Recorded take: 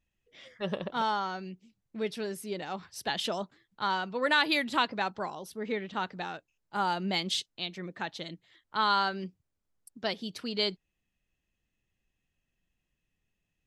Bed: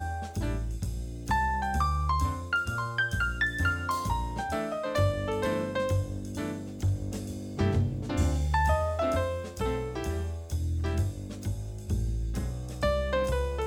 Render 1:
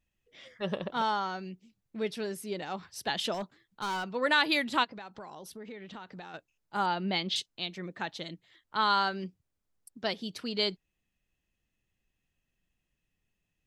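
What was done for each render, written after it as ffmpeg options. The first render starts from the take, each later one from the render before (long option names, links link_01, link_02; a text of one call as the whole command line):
ffmpeg -i in.wav -filter_complex "[0:a]asettb=1/sr,asplit=3[link_01][link_02][link_03];[link_01]atrim=end=3.344[link_04];[link_02]atrim=start=3.34:end=4.15,asetpts=PTS-STARTPTS,afade=type=in:duration=0.004:curve=qsin,afade=type=out:start_time=0.806:duration=0.004:curve=qsin,asoftclip=type=hard:threshold=-30dB[link_05];[link_03]atrim=start=4.146[link_06];[link_04][link_05]acrossfade=duration=0.004:curve1=hsin:curve2=qsin[link_07];[link_07][link_06]acrossfade=duration=0.004:curve1=qsin:curve2=hsin,asplit=3[link_08][link_09][link_10];[link_08]afade=type=out:start_time=4.83:duration=0.02[link_11];[link_09]acompressor=threshold=-41dB:ratio=6:attack=3.2:release=140:knee=1:detection=peak,afade=type=in:start_time=4.83:duration=0.02,afade=type=out:start_time=6.33:duration=0.02[link_12];[link_10]afade=type=in:start_time=6.33:duration=0.02[link_13];[link_11][link_12][link_13]amix=inputs=3:normalize=0,asettb=1/sr,asplit=3[link_14][link_15][link_16];[link_14]atrim=end=6.864[link_17];[link_15]atrim=start=6.86:end=7.36,asetpts=PTS-STARTPTS,afade=type=in:duration=0.004:curve=qsin,afade=type=out:start_time=0.496:duration=0.004:curve=qsin,lowpass=frequency=4700:width=0.5412,lowpass=frequency=4700:width=1.3066[link_18];[link_16]atrim=start=7.356[link_19];[link_17][link_18]acrossfade=duration=0.004:curve1=hsin:curve2=qsin[link_20];[link_20][link_19]acrossfade=duration=0.004:curve1=qsin:curve2=hsin" out.wav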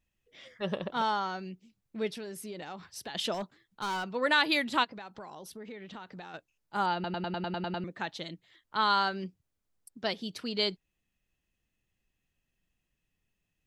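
ffmpeg -i in.wav -filter_complex "[0:a]asettb=1/sr,asplit=3[link_01][link_02][link_03];[link_01]atrim=end=2.104[link_04];[link_02]atrim=start=2.1:end=3.15,asetpts=PTS-STARTPTS,afade=type=in:duration=0.004:curve=qsin,afade=type=out:start_time=1.046:duration=0.004:curve=qsin,acompressor=threshold=-37dB:ratio=6:attack=3.2:release=140:knee=1:detection=peak[link_05];[link_03]atrim=start=3.146[link_06];[link_04][link_05]acrossfade=duration=0.004:curve1=hsin:curve2=qsin[link_07];[link_07][link_06]acrossfade=duration=0.004:curve1=qsin:curve2=hsin,asplit=10[link_08][link_09][link_10][link_11][link_12][link_13][link_14][link_15][link_16][link_17];[link_08]atrim=end=7.042[link_18];[link_09]atrim=start=6.938:end=7.042[link_19];[link_10]atrim=start=6.938:end=7.042[link_20];[link_11]atrim=start=6.938:end=7.042[link_21];[link_12]atrim=start=6.938:end=7.042[link_22];[link_13]atrim=start=6.938:end=7.042[link_23];[link_14]atrim=start=6.938:end=7.042[link_24];[link_15]atrim=start=6.938:end=7.042[link_25];[link_16]atrim=start=6.938:end=7.042[link_26];[link_17]atrim=start=7.838[link_27];[link_18][link_19]acrossfade=duration=0.004:curve1=hsin:curve2=hsin[link_28];[link_28][link_20]acrossfade=duration=0.004:curve1=hsin:curve2=hsin[link_29];[link_29][link_21]acrossfade=duration=0.004:curve1=hsin:curve2=hsin[link_30];[link_30][link_22]acrossfade=duration=0.004:curve1=hsin:curve2=hsin[link_31];[link_31][link_23]acrossfade=duration=0.004:curve1=hsin:curve2=hsin[link_32];[link_32][link_24]acrossfade=duration=0.004:curve1=hsin:curve2=hsin[link_33];[link_33][link_25]acrossfade=duration=0.004:curve1=hsin:curve2=hsin[link_34];[link_34][link_26]acrossfade=duration=0.004:curve1=hsin:curve2=hsin[link_35];[link_35][link_27]acrossfade=duration=0.004:curve1=hsin:curve2=hsin" out.wav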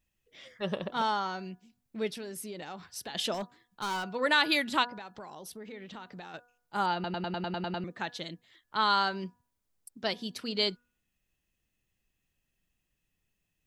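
ffmpeg -i in.wav -af "highshelf=frequency=6800:gain=5,bandreject=frequency=243:width_type=h:width=4,bandreject=frequency=486:width_type=h:width=4,bandreject=frequency=729:width_type=h:width=4,bandreject=frequency=972:width_type=h:width=4,bandreject=frequency=1215:width_type=h:width=4,bandreject=frequency=1458:width_type=h:width=4,bandreject=frequency=1701:width_type=h:width=4" out.wav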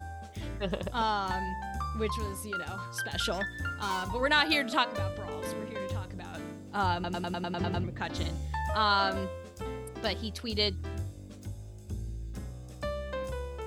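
ffmpeg -i in.wav -i bed.wav -filter_complex "[1:a]volume=-8dB[link_01];[0:a][link_01]amix=inputs=2:normalize=0" out.wav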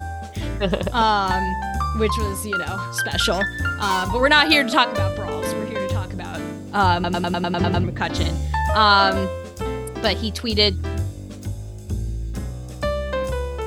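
ffmpeg -i in.wav -af "volume=11.5dB,alimiter=limit=-2dB:level=0:latency=1" out.wav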